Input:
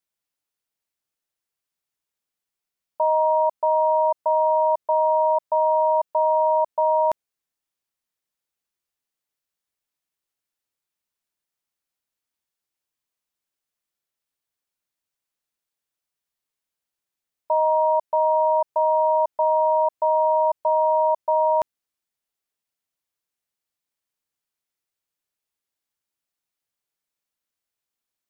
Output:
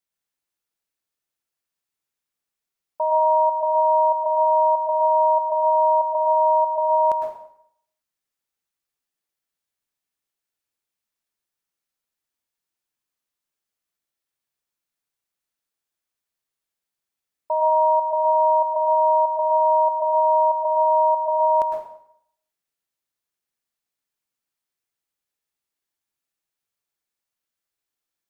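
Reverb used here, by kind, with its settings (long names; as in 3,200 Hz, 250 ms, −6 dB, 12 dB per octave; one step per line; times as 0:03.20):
dense smooth reverb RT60 0.68 s, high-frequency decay 0.85×, pre-delay 95 ms, DRR 1.5 dB
level −2 dB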